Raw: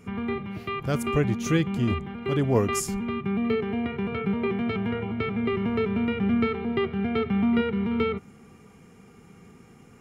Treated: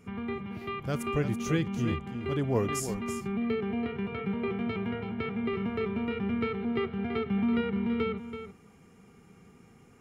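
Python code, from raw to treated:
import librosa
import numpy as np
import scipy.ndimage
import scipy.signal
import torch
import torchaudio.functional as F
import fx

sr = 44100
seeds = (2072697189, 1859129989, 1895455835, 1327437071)

y = x + 10.0 ** (-9.5 / 20.0) * np.pad(x, (int(331 * sr / 1000.0), 0))[:len(x)]
y = F.gain(torch.from_numpy(y), -5.5).numpy()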